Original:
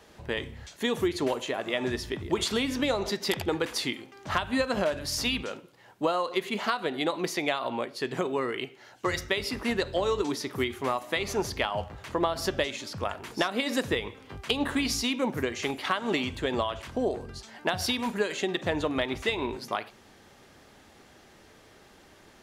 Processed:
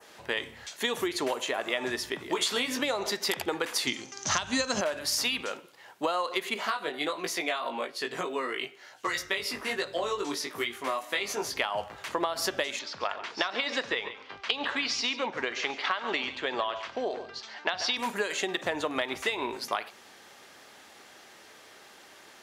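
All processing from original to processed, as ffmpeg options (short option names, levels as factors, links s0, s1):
-filter_complex "[0:a]asettb=1/sr,asplit=3[s0][s1][s2];[s0]atrim=end=2.194[s3];[s1]atrim=start=2.19:end=2.79,asetpts=PTS-STARTPTS,afade=t=in:d=0.004:c=qsin,afade=t=out:st=0.596:d=0.004:c=qsin,highpass=110,asplit=2[s4][s5];[s5]adelay=16,volume=0.562[s6];[s4][s6]amix=inputs=2:normalize=0,atrim=end_sample=26460[s7];[s2]atrim=start=2.786[s8];[s3][s7]acrossfade=d=0.004:c1=hsin:c2=qsin[s9];[s9][s8]acrossfade=d=0.004:c1=qsin:c2=hsin,asettb=1/sr,asplit=3[s10][s11][s12];[s10]atrim=end=3.874[s13];[s11]atrim=start=3.87:end=4.81,asetpts=PTS-STARTPTS,afade=t=in:d=0.004:c=qsin,afade=t=out:st=0.936:d=0.004:c=qsin,lowpass=f=6200:t=q:w=7.2,bass=f=250:g=12,treble=f=4000:g=6[s14];[s12]atrim=start=4.806[s15];[s13][s14]acrossfade=d=0.004:c1=hsin:c2=qsin[s16];[s16][s15]acrossfade=d=0.004:c1=qsin:c2=hsin,asettb=1/sr,asplit=3[s17][s18][s19];[s17]atrim=end=6.544[s20];[s18]atrim=start=6.54:end=11.54,asetpts=PTS-STARTPTS,afade=t=in:d=0.004:c=qsin,afade=t=out:st=4.996:d=0.004:c=qsin,bandreject=f=850:w=15,flanger=delay=17.5:depth=3.3:speed=1.2[s21];[s19]atrim=start=11.536[s22];[s20][s21]acrossfade=d=0.004:c1=hsin:c2=qsin[s23];[s23][s22]acrossfade=d=0.004:c1=qsin:c2=hsin,asettb=1/sr,asplit=3[s24][s25][s26];[s24]atrim=end=12.794[s27];[s25]atrim=start=12.79:end=17.97,asetpts=PTS-STARTPTS,afade=t=in:d=0.004:c=qsin,afade=t=out:st=5.176:d=0.004:c=qsin,lowpass=f=5300:w=0.5412,lowpass=f=5300:w=1.3066,lowshelf=f=330:g=-8,aecho=1:1:140:0.211,atrim=end_sample=228438[s28];[s26]atrim=start=17.966[s29];[s27][s28]acrossfade=d=0.004:c1=hsin:c2=qsin[s30];[s30][s29]acrossfade=d=0.004:c1=qsin:c2=hsin,highpass=f=840:p=1,adynamicequalizer=threshold=0.00562:dfrequency=3600:dqfactor=0.9:tfrequency=3600:tqfactor=0.9:attack=5:release=100:ratio=0.375:range=2:mode=cutabove:tftype=bell,acompressor=threshold=0.0282:ratio=4,volume=2"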